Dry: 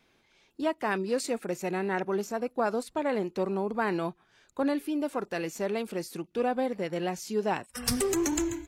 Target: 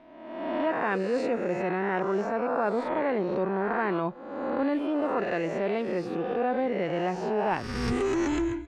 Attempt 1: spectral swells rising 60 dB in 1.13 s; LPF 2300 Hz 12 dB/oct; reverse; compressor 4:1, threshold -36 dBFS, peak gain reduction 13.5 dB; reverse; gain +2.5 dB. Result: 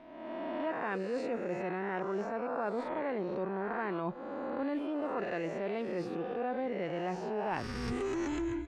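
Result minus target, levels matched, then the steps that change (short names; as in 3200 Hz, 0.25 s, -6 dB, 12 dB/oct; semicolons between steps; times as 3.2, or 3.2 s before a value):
compressor: peak gain reduction +8 dB
change: compressor 4:1, threshold -25.5 dBFS, peak gain reduction 5.5 dB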